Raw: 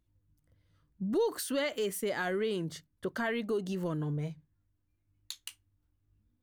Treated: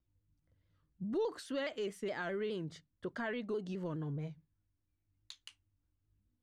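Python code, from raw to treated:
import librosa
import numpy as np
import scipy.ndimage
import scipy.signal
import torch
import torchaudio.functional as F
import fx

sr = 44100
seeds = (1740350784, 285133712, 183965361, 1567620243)

y = fx.air_absorb(x, sr, metres=86.0)
y = fx.vibrato_shape(y, sr, shape='saw_down', rate_hz=4.8, depth_cents=100.0)
y = y * librosa.db_to_amplitude(-5.5)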